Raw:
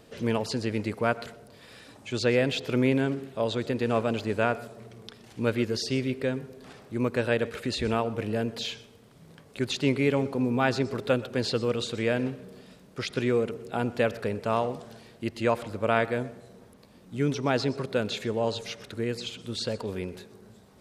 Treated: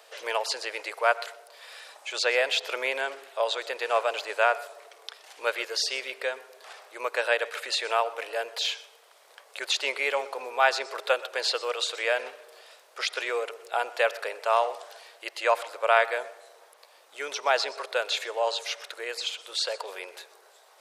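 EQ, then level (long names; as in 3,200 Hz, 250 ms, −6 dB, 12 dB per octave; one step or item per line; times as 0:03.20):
inverse Chebyshev high-pass filter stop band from 230 Hz, stop band 50 dB
+5.5 dB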